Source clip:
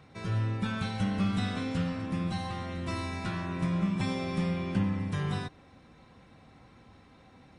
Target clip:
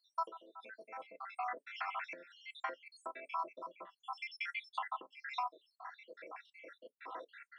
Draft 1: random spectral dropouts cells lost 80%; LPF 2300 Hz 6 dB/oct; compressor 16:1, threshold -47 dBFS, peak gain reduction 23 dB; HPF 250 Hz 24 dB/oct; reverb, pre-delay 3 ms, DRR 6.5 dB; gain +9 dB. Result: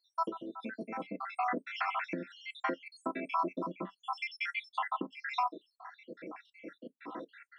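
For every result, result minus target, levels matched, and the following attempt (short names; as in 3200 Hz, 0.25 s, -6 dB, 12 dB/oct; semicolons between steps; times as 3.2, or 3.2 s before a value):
250 Hz band +15.5 dB; compressor: peak gain reduction -6.5 dB
random spectral dropouts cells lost 80%; LPF 2300 Hz 6 dB/oct; compressor 16:1, threshold -47 dBFS, peak gain reduction 23 dB; HPF 510 Hz 24 dB/oct; reverb, pre-delay 3 ms, DRR 6.5 dB; gain +9 dB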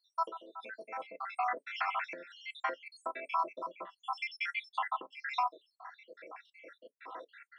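compressor: peak gain reduction -6.5 dB
random spectral dropouts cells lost 80%; LPF 2300 Hz 6 dB/oct; compressor 16:1, threshold -54 dBFS, peak gain reduction 29.5 dB; HPF 510 Hz 24 dB/oct; reverb, pre-delay 3 ms, DRR 6.5 dB; gain +9 dB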